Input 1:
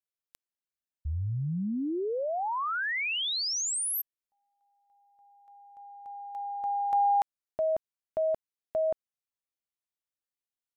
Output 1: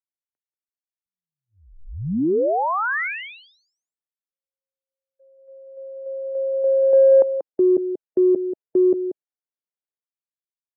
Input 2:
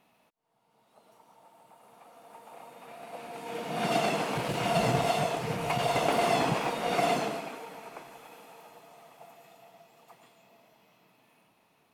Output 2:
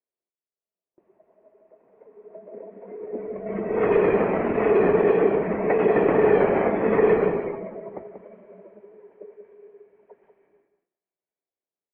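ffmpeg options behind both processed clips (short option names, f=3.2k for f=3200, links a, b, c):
-filter_complex "[0:a]afftdn=nr=14:nf=-41,highpass=f=530:t=q:w=0.5412,highpass=f=530:t=q:w=1.307,lowpass=f=2.4k:t=q:w=0.5176,lowpass=f=2.4k:t=q:w=0.7071,lowpass=f=2.4k:t=q:w=1.932,afreqshift=-270,asplit=2[a][b];[b]alimiter=limit=-22.5dB:level=0:latency=1:release=153,volume=3dB[c];[a][c]amix=inputs=2:normalize=0,agate=range=-27dB:threshold=-60dB:ratio=3:release=451:detection=rms,aecho=1:1:186:0.316,acrossover=split=590[d][e];[d]acontrast=47[f];[f][e]amix=inputs=2:normalize=0"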